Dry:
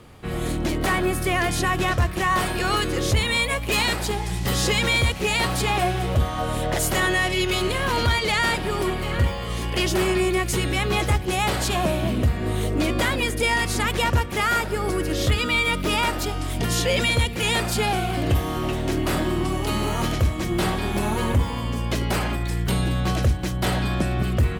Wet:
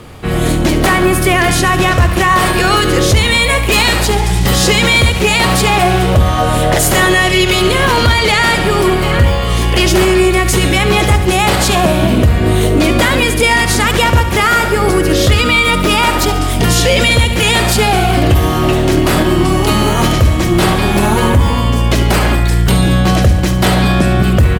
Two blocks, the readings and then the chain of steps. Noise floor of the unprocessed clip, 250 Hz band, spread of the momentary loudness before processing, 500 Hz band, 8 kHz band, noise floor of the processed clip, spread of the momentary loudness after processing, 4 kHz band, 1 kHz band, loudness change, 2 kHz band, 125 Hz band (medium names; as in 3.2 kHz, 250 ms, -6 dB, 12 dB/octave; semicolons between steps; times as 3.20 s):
-28 dBFS, +12.5 dB, 5 LU, +12.0 dB, +12.0 dB, -14 dBFS, 3 LU, +11.5 dB, +11.5 dB, +11.5 dB, +11.0 dB, +11.5 dB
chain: on a send: feedback delay 70 ms, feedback 56%, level -12 dB; on the sum: loudness maximiser +14 dB; trim -1 dB